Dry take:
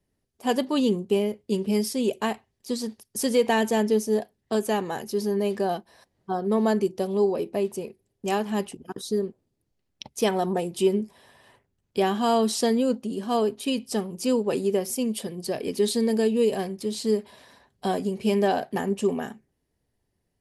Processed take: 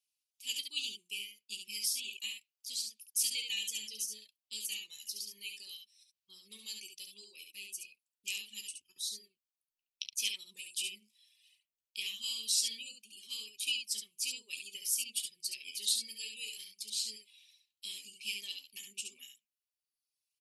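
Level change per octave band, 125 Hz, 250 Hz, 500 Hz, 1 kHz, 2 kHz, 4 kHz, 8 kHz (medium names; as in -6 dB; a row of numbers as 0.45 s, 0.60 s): under -40 dB, under -40 dB, under -40 dB, under -40 dB, -8.5 dB, 0.0 dB, +0.5 dB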